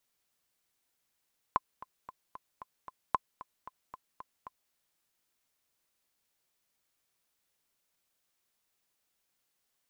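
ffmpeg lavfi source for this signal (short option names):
-f lavfi -i "aevalsrc='pow(10,(-12.5-18.5*gte(mod(t,6*60/227),60/227))/20)*sin(2*PI*1030*mod(t,60/227))*exp(-6.91*mod(t,60/227)/0.03)':d=3.17:s=44100"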